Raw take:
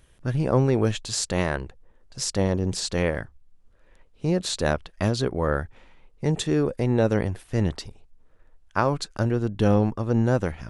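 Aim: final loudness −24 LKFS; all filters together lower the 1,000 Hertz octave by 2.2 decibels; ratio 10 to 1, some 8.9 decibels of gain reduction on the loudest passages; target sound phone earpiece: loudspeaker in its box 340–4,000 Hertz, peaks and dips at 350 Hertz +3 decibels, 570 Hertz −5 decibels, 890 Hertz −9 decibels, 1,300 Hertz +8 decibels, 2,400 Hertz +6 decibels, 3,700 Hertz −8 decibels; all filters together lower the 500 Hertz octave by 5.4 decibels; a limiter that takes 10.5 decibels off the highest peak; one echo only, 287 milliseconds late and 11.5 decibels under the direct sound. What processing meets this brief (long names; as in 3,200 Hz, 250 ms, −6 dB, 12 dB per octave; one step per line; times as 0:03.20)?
parametric band 500 Hz −3 dB
parametric band 1,000 Hz −3 dB
downward compressor 10 to 1, threshold −25 dBFS
brickwall limiter −24.5 dBFS
loudspeaker in its box 340–4,000 Hz, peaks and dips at 350 Hz +3 dB, 570 Hz −5 dB, 890 Hz −9 dB, 1,300 Hz +8 dB, 2,400 Hz +6 dB, 3,700 Hz −8 dB
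single-tap delay 287 ms −11.5 dB
level +18 dB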